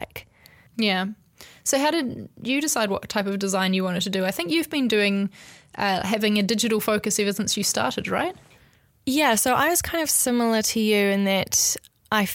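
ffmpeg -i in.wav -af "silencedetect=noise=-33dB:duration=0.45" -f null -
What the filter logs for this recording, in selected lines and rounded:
silence_start: 8.31
silence_end: 9.07 | silence_duration: 0.76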